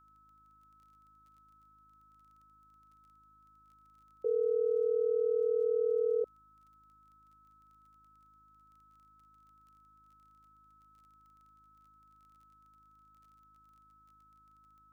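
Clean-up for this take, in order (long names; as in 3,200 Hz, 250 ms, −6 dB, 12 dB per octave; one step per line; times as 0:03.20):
click removal
hum removal 52.5 Hz, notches 6
notch filter 1,300 Hz, Q 30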